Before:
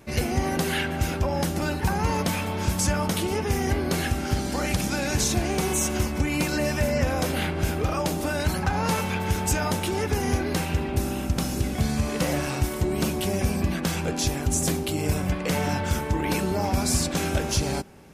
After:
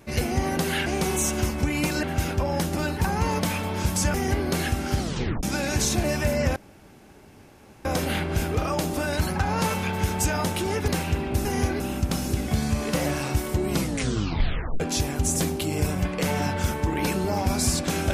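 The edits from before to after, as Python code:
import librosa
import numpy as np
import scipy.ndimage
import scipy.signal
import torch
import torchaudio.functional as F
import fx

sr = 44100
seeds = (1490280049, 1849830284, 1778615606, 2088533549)

y = fx.edit(x, sr, fx.cut(start_s=2.97, length_s=0.56),
    fx.tape_stop(start_s=4.39, length_s=0.43),
    fx.move(start_s=5.43, length_s=1.17, to_s=0.86),
    fx.insert_room_tone(at_s=7.12, length_s=1.29),
    fx.move(start_s=10.15, length_s=0.35, to_s=11.07),
    fx.tape_stop(start_s=12.96, length_s=1.11), tone=tone)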